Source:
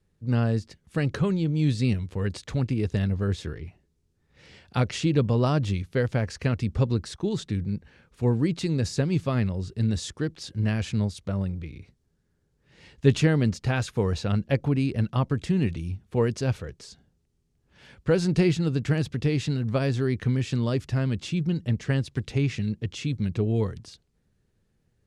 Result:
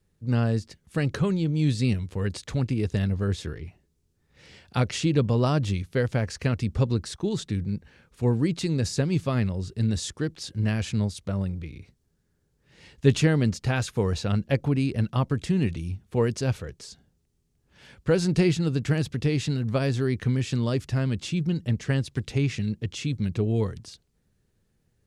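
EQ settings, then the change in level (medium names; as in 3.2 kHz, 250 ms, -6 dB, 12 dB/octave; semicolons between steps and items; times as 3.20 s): treble shelf 6.5 kHz +6 dB; 0.0 dB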